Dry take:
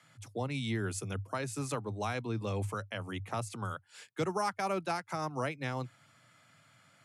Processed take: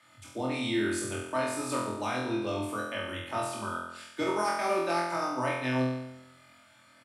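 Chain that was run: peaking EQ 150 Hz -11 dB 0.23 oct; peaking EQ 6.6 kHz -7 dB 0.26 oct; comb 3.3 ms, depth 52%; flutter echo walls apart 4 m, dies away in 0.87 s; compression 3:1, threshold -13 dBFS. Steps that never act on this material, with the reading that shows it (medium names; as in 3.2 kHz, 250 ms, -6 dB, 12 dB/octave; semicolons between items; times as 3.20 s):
compression, threshold -13 dBFS: peak at its input -16.0 dBFS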